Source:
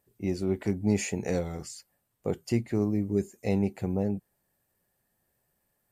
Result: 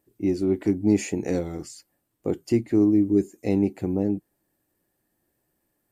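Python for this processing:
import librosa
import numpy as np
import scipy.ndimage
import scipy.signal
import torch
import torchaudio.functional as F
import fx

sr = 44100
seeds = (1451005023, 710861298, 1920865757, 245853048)

y = fx.peak_eq(x, sr, hz=310.0, db=14.0, octaves=0.46)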